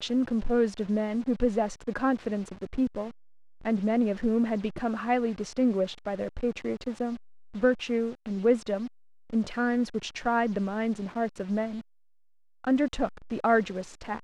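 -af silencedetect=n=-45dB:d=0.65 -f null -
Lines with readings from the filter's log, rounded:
silence_start: 11.81
silence_end: 12.64 | silence_duration: 0.83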